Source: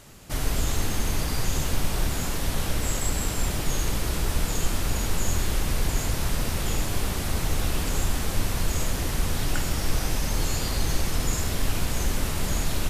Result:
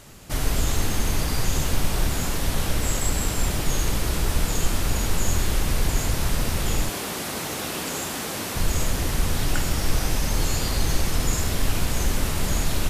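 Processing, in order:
0:06.89–0:08.56: high-pass filter 220 Hz 12 dB per octave
level +2.5 dB

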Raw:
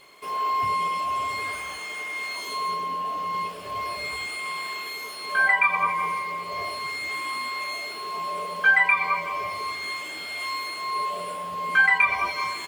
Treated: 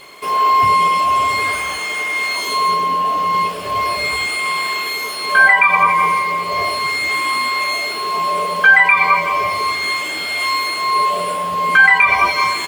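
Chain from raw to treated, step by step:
boost into a limiter +13 dB
level −1 dB

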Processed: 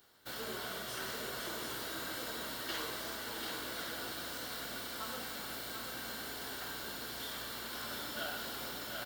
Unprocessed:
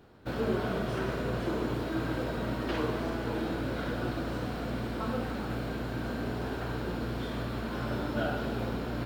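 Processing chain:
first-order pre-emphasis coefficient 0.97
notch filter 2,500 Hz, Q 8
single-tap delay 738 ms −5 dB
level +9 dB

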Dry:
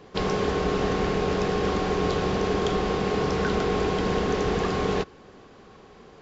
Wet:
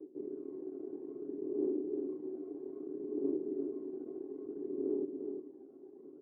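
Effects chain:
comb filter 7.4 ms, depth 50%
reversed playback
downward compressor 6 to 1, threshold −38 dBFS, peak gain reduction 17 dB
reversed playback
phase shifter 0.61 Hz, delay 1.5 ms, feedback 67%
half-wave rectification
flat-topped band-pass 330 Hz, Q 3.3
on a send: single-tap delay 348 ms −6 dB
on the sum: level +10.5 dB

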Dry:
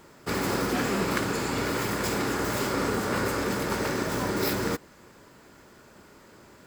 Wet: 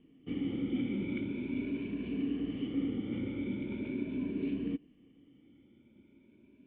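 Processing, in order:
rippled gain that drifts along the octave scale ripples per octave 1.5, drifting +0.41 Hz, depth 10 dB
formant resonators in series i

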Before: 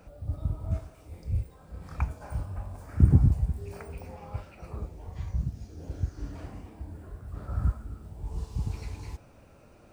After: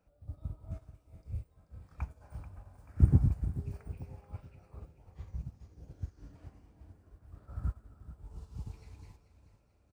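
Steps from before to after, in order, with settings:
on a send: repeating echo 435 ms, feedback 54%, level −9.5 dB
on the sum: expander for the loud parts 1.5 to 1, over −47 dBFS
level −3.5 dB

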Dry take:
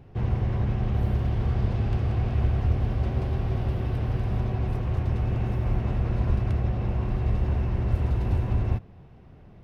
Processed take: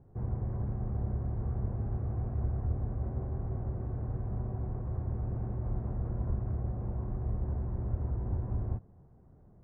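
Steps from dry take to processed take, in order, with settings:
Bessel low-pass filter 980 Hz, order 6
level −8.5 dB

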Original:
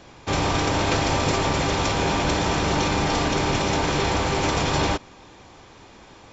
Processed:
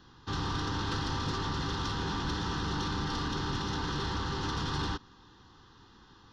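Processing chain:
phaser with its sweep stopped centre 2,300 Hz, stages 6
soft clipping −17 dBFS, distortion −20 dB
level −7 dB

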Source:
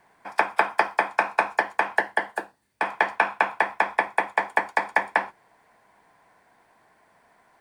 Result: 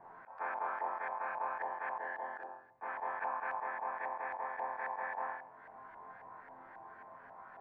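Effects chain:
resonators tuned to a chord F2 major, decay 0.46 s
auto-filter low-pass saw up 3.7 Hz 850–1,700 Hz
volume swells 562 ms
level +17 dB

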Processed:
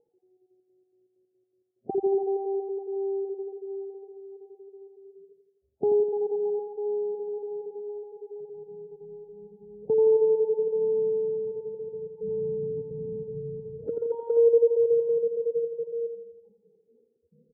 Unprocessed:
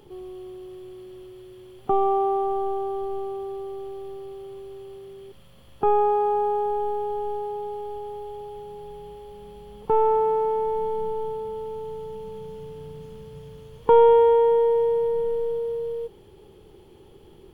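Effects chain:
time-frequency cells dropped at random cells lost 31%
high-pass filter 160 Hz 12 dB per octave
noise reduction from a noise print of the clip's start 28 dB
elliptic low-pass filter 670 Hz, stop band 40 dB
0:12.18–0:14.37: compressor whose output falls as the input rises −23 dBFS, ratio −0.5
repeating echo 84 ms, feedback 55%, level −8 dB

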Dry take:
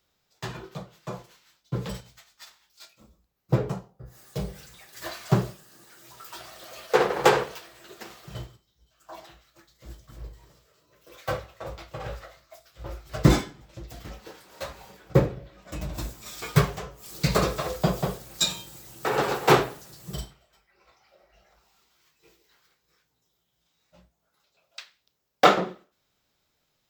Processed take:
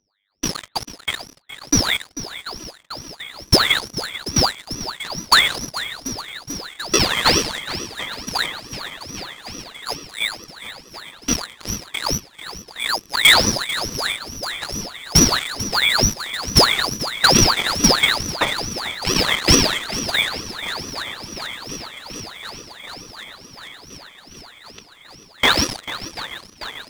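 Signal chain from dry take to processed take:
samples in bit-reversed order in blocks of 64 samples
hum with harmonics 100 Hz, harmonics 8, −61 dBFS −4 dB per octave
flat-topped bell 580 Hz −8.5 dB 1.1 octaves
convolution reverb RT60 1.0 s, pre-delay 93 ms, DRR 11.5 dB
voice inversion scrambler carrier 2,900 Hz
leveller curve on the samples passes 5
feedback echo with a long and a short gap by turns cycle 737 ms, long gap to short 1.5 to 1, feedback 73%, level −14 dB
ring modulator whose carrier an LFO sweeps 1,800 Hz, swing 70%, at 2.3 Hz

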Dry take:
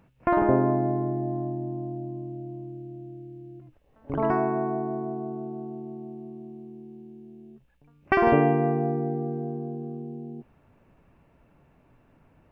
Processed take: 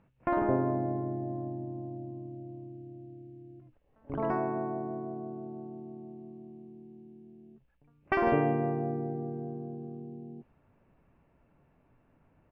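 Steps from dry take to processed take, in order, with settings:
low-pass that shuts in the quiet parts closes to 2,900 Hz, open at −20 dBFS
pitch-shifted copies added −4 semitones −14 dB
level −6.5 dB

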